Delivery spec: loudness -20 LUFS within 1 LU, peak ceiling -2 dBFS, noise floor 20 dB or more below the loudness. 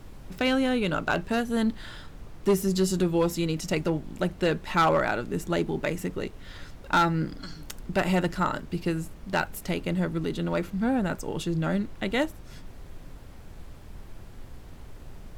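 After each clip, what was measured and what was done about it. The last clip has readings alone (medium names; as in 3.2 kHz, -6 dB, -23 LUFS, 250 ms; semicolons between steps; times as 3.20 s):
clipped samples 0.4%; clipping level -16.0 dBFS; noise floor -45 dBFS; noise floor target -48 dBFS; loudness -27.5 LUFS; peak level -16.0 dBFS; loudness target -20.0 LUFS
-> clip repair -16 dBFS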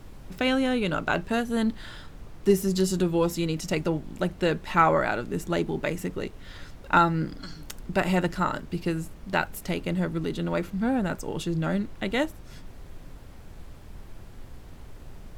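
clipped samples 0.0%; noise floor -45 dBFS; noise floor target -47 dBFS
-> noise print and reduce 6 dB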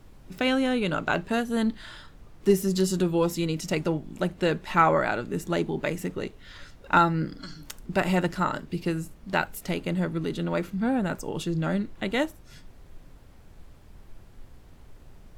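noise floor -51 dBFS; loudness -27.0 LUFS; peak level -7.0 dBFS; loudness target -20.0 LUFS
-> trim +7 dB; peak limiter -2 dBFS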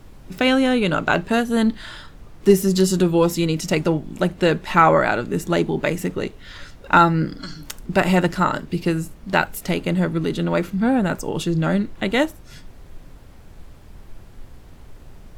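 loudness -20.0 LUFS; peak level -2.0 dBFS; noise floor -44 dBFS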